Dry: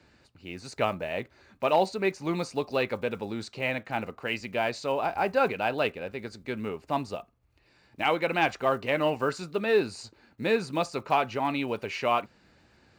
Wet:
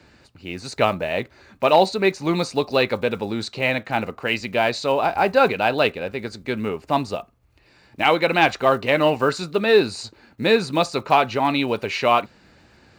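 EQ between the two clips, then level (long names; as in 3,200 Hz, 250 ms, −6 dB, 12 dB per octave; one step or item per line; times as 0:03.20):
dynamic equaliser 3,900 Hz, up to +7 dB, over −55 dBFS, Q 5
+8.0 dB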